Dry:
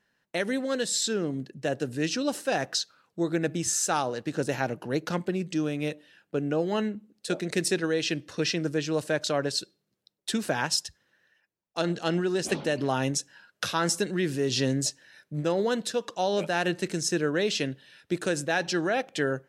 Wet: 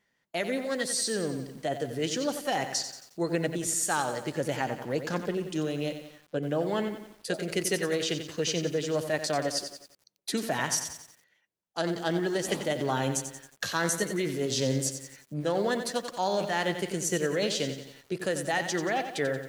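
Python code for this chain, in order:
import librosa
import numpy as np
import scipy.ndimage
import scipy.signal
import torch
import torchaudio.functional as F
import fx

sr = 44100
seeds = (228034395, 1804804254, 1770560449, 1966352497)

y = fx.formant_shift(x, sr, semitones=2)
y = fx.echo_crushed(y, sr, ms=90, feedback_pct=55, bits=8, wet_db=-9)
y = y * librosa.db_to_amplitude(-2.0)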